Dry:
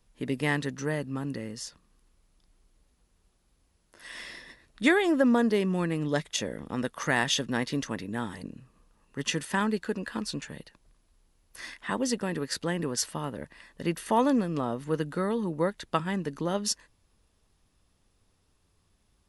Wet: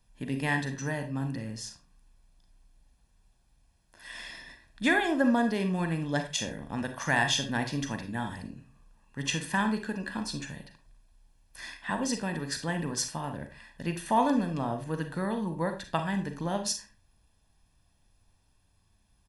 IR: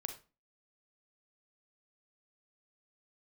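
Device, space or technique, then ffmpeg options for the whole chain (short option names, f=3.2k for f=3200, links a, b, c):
microphone above a desk: -filter_complex "[0:a]aecho=1:1:1.2:0.53[a];[1:a]atrim=start_sample=2205[b];[a][b]afir=irnorm=-1:irlink=0"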